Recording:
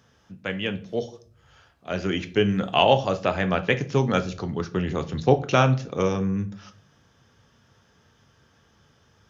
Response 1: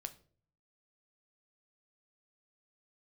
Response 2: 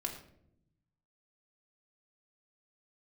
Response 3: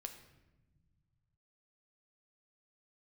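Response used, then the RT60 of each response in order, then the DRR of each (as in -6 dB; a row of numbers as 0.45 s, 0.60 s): 1; 0.45 s, 0.70 s, no single decay rate; 8.5 dB, 0.0 dB, 5.5 dB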